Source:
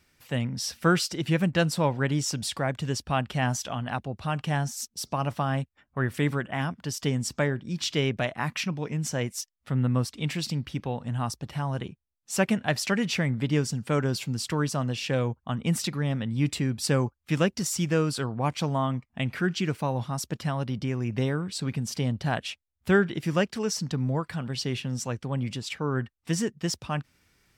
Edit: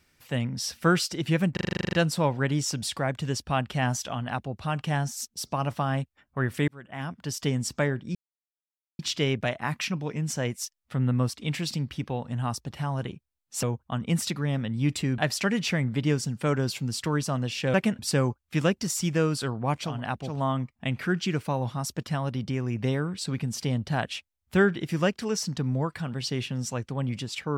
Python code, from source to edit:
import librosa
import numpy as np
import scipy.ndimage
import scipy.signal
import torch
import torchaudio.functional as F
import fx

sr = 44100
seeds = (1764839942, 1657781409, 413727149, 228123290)

y = fx.edit(x, sr, fx.stutter(start_s=1.53, slice_s=0.04, count=11),
    fx.duplicate(start_s=3.74, length_s=0.42, to_s=18.66, crossfade_s=0.24),
    fx.fade_in_span(start_s=6.28, length_s=0.63),
    fx.insert_silence(at_s=7.75, length_s=0.84),
    fx.swap(start_s=12.39, length_s=0.25, other_s=15.2, other_length_s=1.55), tone=tone)